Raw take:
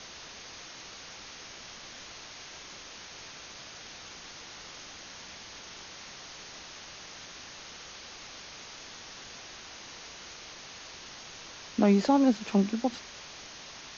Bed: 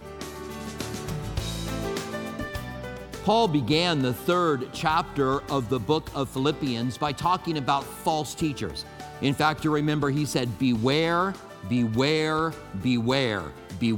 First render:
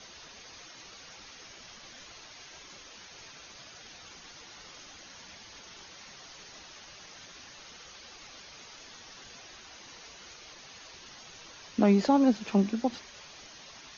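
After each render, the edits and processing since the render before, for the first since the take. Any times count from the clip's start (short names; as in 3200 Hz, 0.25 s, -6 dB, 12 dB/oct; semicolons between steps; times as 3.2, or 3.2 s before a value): denoiser 8 dB, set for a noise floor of -47 dBFS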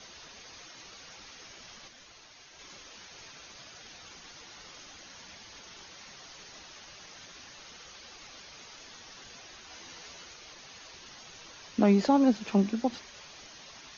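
1.88–2.59 gain -4.5 dB; 9.68–10.24 doubler 12 ms -3 dB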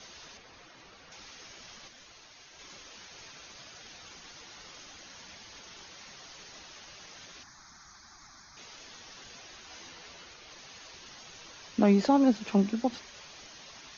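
0.37–1.12 LPF 2000 Hz 6 dB/oct; 7.43–8.57 fixed phaser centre 1200 Hz, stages 4; 9.89–10.51 air absorption 63 m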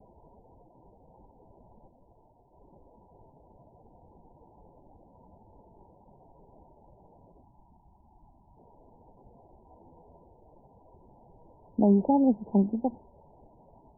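Chebyshev low-pass 980 Hz, order 10; low shelf 100 Hz +8.5 dB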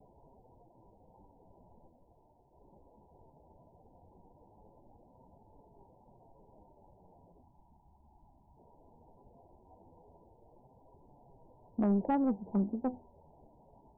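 flange 0.18 Hz, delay 6.7 ms, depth 8 ms, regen +67%; soft clip -22.5 dBFS, distortion -16 dB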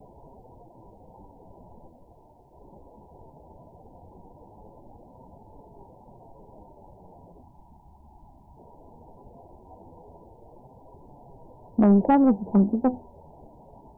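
gain +11.5 dB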